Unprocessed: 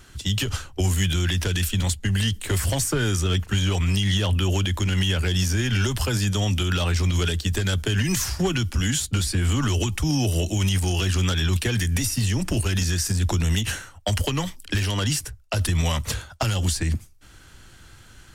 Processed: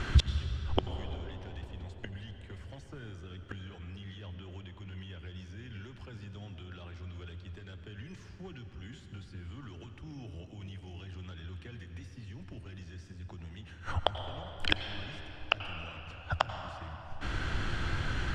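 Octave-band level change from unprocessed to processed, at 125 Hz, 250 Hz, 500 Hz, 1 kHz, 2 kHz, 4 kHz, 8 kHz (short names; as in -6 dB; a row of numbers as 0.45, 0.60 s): -16.5, -19.0, -13.5, -7.0, -11.5, -14.5, -30.0 dB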